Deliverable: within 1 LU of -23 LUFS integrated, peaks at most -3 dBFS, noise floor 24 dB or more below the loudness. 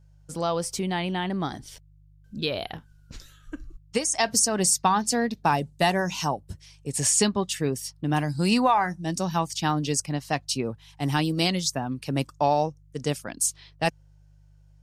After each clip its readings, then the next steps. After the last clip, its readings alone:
hum 50 Hz; highest harmonic 150 Hz; hum level -46 dBFS; loudness -25.5 LUFS; peak level -8.5 dBFS; loudness target -23.0 LUFS
-> de-hum 50 Hz, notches 3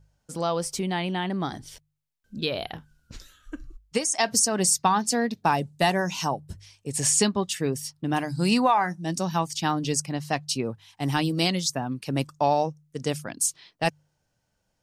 hum not found; loudness -25.5 LUFS; peak level -8.5 dBFS; loudness target -23.0 LUFS
-> trim +2.5 dB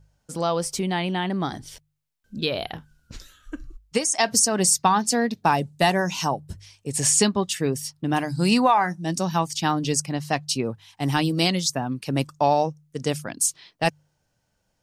loudness -23.0 LUFS; peak level -6.0 dBFS; noise floor -73 dBFS

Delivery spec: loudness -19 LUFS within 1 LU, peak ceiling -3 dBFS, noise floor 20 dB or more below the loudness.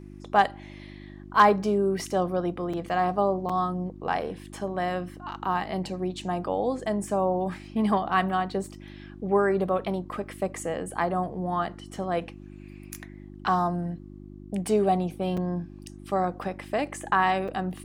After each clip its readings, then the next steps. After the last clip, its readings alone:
dropouts 4; longest dropout 5.0 ms; hum 50 Hz; highest harmonic 350 Hz; hum level -42 dBFS; loudness -27.5 LUFS; peak level -7.0 dBFS; loudness target -19.0 LUFS
-> interpolate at 2.73/3.49/15.37/17.48 s, 5 ms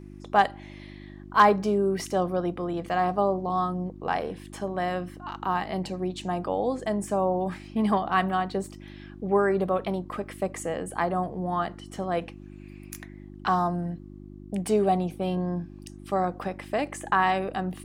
dropouts 0; hum 50 Hz; highest harmonic 350 Hz; hum level -42 dBFS
-> de-hum 50 Hz, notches 7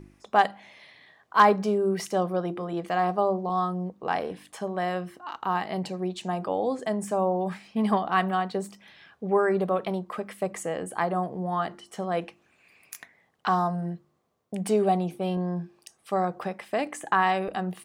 hum not found; loudness -27.5 LUFS; peak level -7.0 dBFS; loudness target -19.0 LUFS
-> trim +8.5 dB; peak limiter -3 dBFS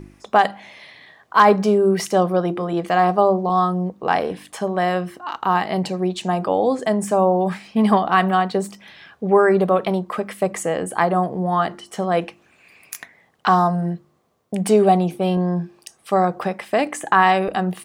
loudness -19.5 LUFS; peak level -3.0 dBFS; noise floor -58 dBFS

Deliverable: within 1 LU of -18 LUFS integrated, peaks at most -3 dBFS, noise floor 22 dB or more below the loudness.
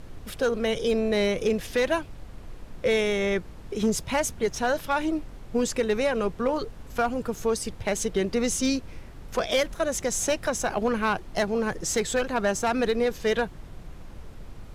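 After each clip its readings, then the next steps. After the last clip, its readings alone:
clipped samples 0.4%; clipping level -16.0 dBFS; noise floor -43 dBFS; noise floor target -49 dBFS; loudness -26.5 LUFS; peak level -16.0 dBFS; loudness target -18.0 LUFS
-> clip repair -16 dBFS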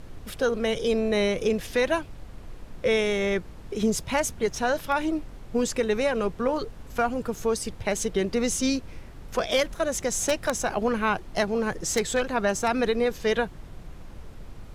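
clipped samples 0.0%; noise floor -43 dBFS; noise floor target -49 dBFS
-> noise print and reduce 6 dB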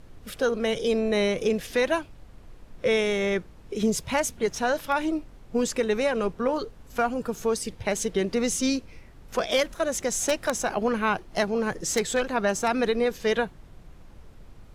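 noise floor -49 dBFS; loudness -26.5 LUFS; peak level -7.0 dBFS; loudness target -18.0 LUFS
-> trim +8.5 dB; peak limiter -3 dBFS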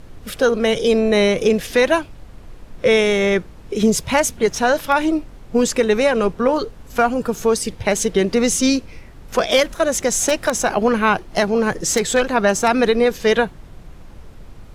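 loudness -18.0 LUFS; peak level -3.0 dBFS; noise floor -40 dBFS

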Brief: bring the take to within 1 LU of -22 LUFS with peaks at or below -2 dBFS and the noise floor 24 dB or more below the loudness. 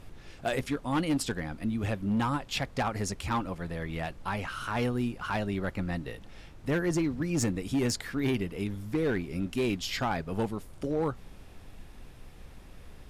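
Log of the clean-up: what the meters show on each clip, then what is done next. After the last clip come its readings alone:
clipped samples 1.4%; clipping level -22.5 dBFS; noise floor -50 dBFS; noise floor target -56 dBFS; loudness -31.5 LUFS; peak level -22.5 dBFS; loudness target -22.0 LUFS
-> clip repair -22.5 dBFS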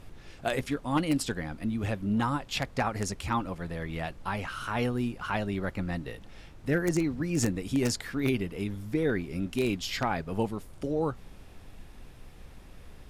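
clipped samples 0.0%; noise floor -50 dBFS; noise floor target -55 dBFS
-> noise print and reduce 6 dB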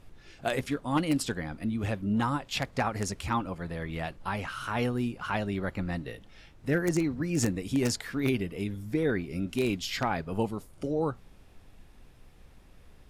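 noise floor -55 dBFS; loudness -31.0 LUFS; peak level -13.5 dBFS; loudness target -22.0 LUFS
-> trim +9 dB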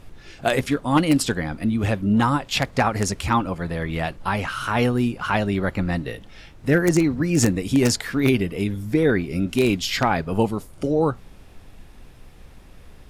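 loudness -22.0 LUFS; peak level -4.5 dBFS; noise floor -46 dBFS

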